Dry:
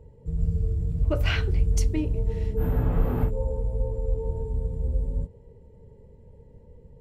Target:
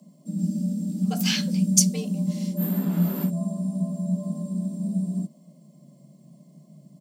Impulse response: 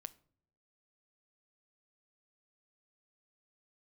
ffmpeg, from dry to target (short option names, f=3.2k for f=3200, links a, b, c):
-af "afreqshift=140,firequalizer=gain_entry='entry(110,0);entry(290,-15);entry(2100,-8);entry(4700,11);entry(6700,13)':delay=0.05:min_phase=1,volume=5.5dB"